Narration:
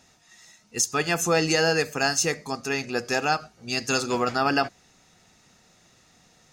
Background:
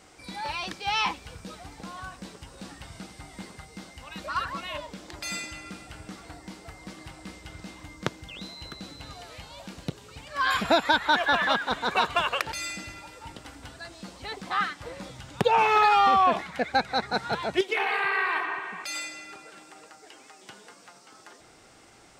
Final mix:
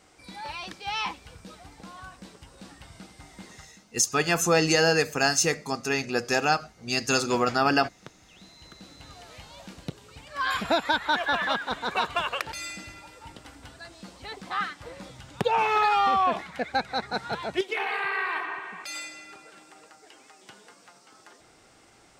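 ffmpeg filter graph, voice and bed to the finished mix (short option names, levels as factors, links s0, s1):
-filter_complex "[0:a]adelay=3200,volume=1.06[s0];[1:a]volume=3.16,afade=t=out:st=3.58:d=0.22:silence=0.237137,afade=t=in:st=8.25:d=1.15:silence=0.199526[s1];[s0][s1]amix=inputs=2:normalize=0"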